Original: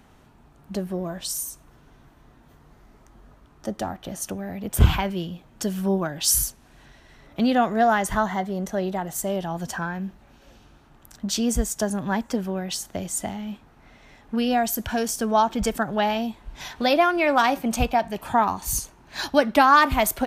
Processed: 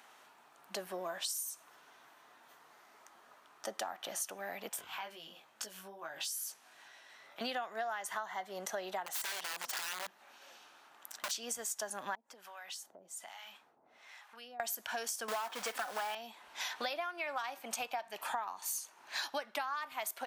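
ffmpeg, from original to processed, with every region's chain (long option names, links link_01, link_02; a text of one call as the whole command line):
ffmpeg -i in.wav -filter_complex "[0:a]asettb=1/sr,asplit=3[link_01][link_02][link_03];[link_01]atrim=end=4.694[link_04];[link_02]atrim=start=4.69:end=7.41,asetpts=PTS-STARTPTS,afade=type=in:duration=0.004:curve=qsin,afade=type=out:start_time=2.716:duration=0.004:curve=qsin,acompressor=threshold=-32dB:ratio=8:attack=3.2:release=140:knee=1:detection=peak,flanger=delay=18.5:depth=2:speed=2.2[link_05];[link_03]atrim=start=7.406[link_06];[link_04][link_05]acrossfade=duration=0.004:curve1=hsin:curve2=qsin[link_07];[link_07][link_06]acrossfade=duration=0.004:curve1=qsin:curve2=hsin,asettb=1/sr,asplit=3[link_08][link_09][link_10];[link_08]atrim=end=9.064[link_11];[link_09]atrim=start=9.06:end=11.31,asetpts=PTS-STARTPTS,afade=type=in:duration=0.004:curve=qsin,afade=type=out:start_time=2.246:duration=0.004:curve=qsin,equalizer=frequency=140:width=2.3:gain=-3.5,aeval=exprs='(mod(22.4*val(0)+1,2)-1)/22.4':channel_layout=same[link_12];[link_10]atrim=start=11.306[link_13];[link_11][link_12]acrossfade=duration=0.004:curve1=hsin:curve2=qsin[link_14];[link_14][link_13]acrossfade=duration=0.004:curve1=qsin:curve2=hsin,asettb=1/sr,asplit=3[link_15][link_16][link_17];[link_15]atrim=end=12.154[link_18];[link_16]atrim=start=12.15:end=14.6,asetpts=PTS-STARTPTS,afade=type=in:duration=0.004:curve=qsin,afade=type=out:start_time=2.446:duration=0.004:curve=qsin,acrossover=split=710[link_19][link_20];[link_19]aeval=exprs='val(0)*(1-1/2+1/2*cos(2*PI*1.2*n/s))':channel_layout=same[link_21];[link_20]aeval=exprs='val(0)*(1-1/2-1/2*cos(2*PI*1.2*n/s))':channel_layout=same[link_22];[link_21][link_22]amix=inputs=2:normalize=0,acompressor=threshold=-46dB:ratio=3:attack=3.2:release=140:knee=1:detection=peak[link_23];[link_17]atrim=start=14.596[link_24];[link_18][link_23]acrossfade=duration=0.004:curve1=hsin:curve2=qsin[link_25];[link_25][link_24]acrossfade=duration=0.004:curve1=qsin:curve2=hsin,asettb=1/sr,asplit=3[link_26][link_27][link_28];[link_26]atrim=end=15.284[link_29];[link_27]atrim=start=15.28:end=16.15,asetpts=PTS-STARTPTS,afade=type=in:duration=0.004:curve=qsin,afade=type=out:start_time=0.866:duration=0.004:curve=qsin,aecho=1:1:4:0.43,atrim=end_sample=38367,asplit=2[link_30][link_31];[link_31]highpass=frequency=720:poles=1,volume=21dB,asoftclip=type=tanh:threshold=-10dB[link_32];[link_30][link_32]amix=inputs=2:normalize=0,lowpass=frequency=1600:poles=1,volume=-6dB,acrusher=bits=3:mode=log:mix=0:aa=0.000001[link_33];[link_28]atrim=start=16.146[link_34];[link_29][link_33]acrossfade=duration=0.004:curve1=hsin:curve2=qsin[link_35];[link_35][link_34]acrossfade=duration=0.004:curve1=qsin:curve2=hsin,highpass=820,acompressor=threshold=-36dB:ratio=16,volume=1dB" out.wav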